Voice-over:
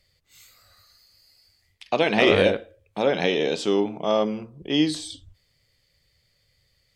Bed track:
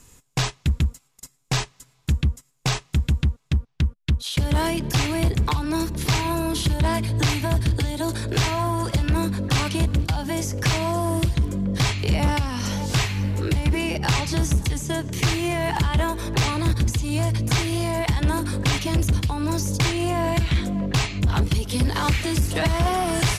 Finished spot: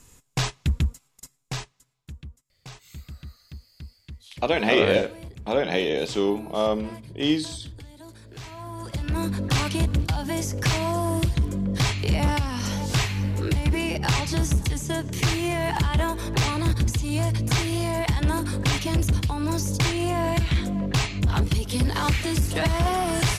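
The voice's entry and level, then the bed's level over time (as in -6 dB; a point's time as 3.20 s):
2.50 s, -1.5 dB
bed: 1.20 s -2 dB
2.15 s -19.5 dB
8.36 s -19.5 dB
9.32 s -1.5 dB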